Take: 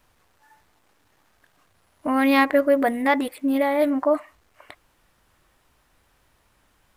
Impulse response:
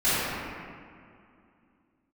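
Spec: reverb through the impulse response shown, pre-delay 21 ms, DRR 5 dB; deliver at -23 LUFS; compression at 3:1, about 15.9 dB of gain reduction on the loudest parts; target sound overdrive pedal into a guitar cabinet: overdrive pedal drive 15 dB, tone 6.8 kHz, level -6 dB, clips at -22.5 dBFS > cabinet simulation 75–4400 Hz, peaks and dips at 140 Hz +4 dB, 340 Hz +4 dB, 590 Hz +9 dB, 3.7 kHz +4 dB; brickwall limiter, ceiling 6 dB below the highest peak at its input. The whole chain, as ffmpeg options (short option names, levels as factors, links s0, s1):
-filter_complex "[0:a]acompressor=threshold=0.0158:ratio=3,alimiter=level_in=1.5:limit=0.0631:level=0:latency=1,volume=0.668,asplit=2[s0][s1];[1:a]atrim=start_sample=2205,adelay=21[s2];[s1][s2]afir=irnorm=-1:irlink=0,volume=0.0794[s3];[s0][s3]amix=inputs=2:normalize=0,asplit=2[s4][s5];[s5]highpass=f=720:p=1,volume=5.62,asoftclip=type=tanh:threshold=0.075[s6];[s4][s6]amix=inputs=2:normalize=0,lowpass=f=6800:p=1,volume=0.501,highpass=75,equalizer=f=140:t=q:w=4:g=4,equalizer=f=340:t=q:w=4:g=4,equalizer=f=590:t=q:w=4:g=9,equalizer=f=3700:t=q:w=4:g=4,lowpass=f=4400:w=0.5412,lowpass=f=4400:w=1.3066,volume=1.88"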